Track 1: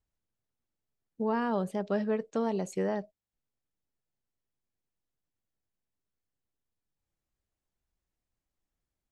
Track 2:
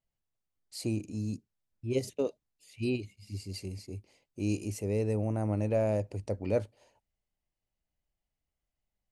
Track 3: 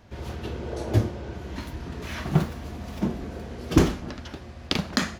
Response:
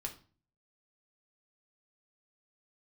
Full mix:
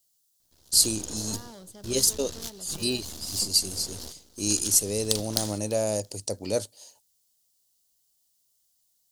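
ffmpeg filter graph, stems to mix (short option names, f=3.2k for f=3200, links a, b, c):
-filter_complex "[0:a]aeval=exprs='clip(val(0),-1,0.0473)':c=same,volume=-15.5dB[a];[1:a]highpass=f=200:p=1,volume=2.5dB,asplit=2[b][c];[2:a]aeval=exprs='max(val(0),0)':c=same,acompressor=threshold=-35dB:ratio=6,adelay=400,volume=-2.5dB,asplit=2[d][e];[e]volume=-20.5dB[f];[c]apad=whole_len=246667[g];[d][g]sidechaingate=range=-22dB:threshold=-55dB:ratio=16:detection=peak[h];[f]aecho=0:1:339|678|1017|1356:1|0.22|0.0484|0.0106[i];[a][b][h][i]amix=inputs=4:normalize=0,aexciter=amount=11.1:drive=4.2:freq=3.5k"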